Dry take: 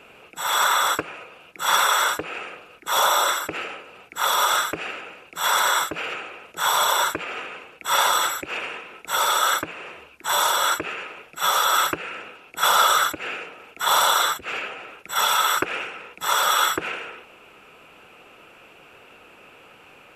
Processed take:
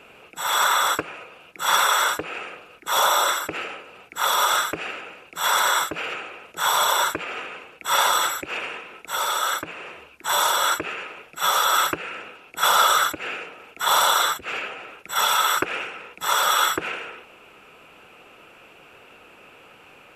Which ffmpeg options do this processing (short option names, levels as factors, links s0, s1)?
-filter_complex "[0:a]asplit=3[s0][s1][s2];[s0]atrim=end=9.062[s3];[s1]atrim=start=9.058:end=9.662,asetpts=PTS-STARTPTS,volume=0.668[s4];[s2]atrim=start=9.658[s5];[s3][s4]acrossfade=d=0.004:c1=hsin:c2=hsin[s6];[s6][s5]acrossfade=d=0.004:c1=hsin:c2=hsin"